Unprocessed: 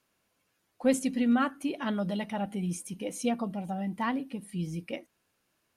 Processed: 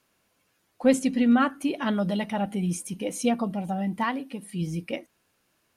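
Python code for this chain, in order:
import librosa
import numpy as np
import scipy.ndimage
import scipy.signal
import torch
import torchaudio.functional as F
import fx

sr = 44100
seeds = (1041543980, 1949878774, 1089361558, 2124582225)

y = fx.high_shelf(x, sr, hz=9100.0, db=-7.5, at=(0.84, 1.5))
y = fx.highpass(y, sr, hz=fx.line((4.03, 550.0), (4.6, 150.0)), slope=6, at=(4.03, 4.6), fade=0.02)
y = F.gain(torch.from_numpy(y), 5.0).numpy()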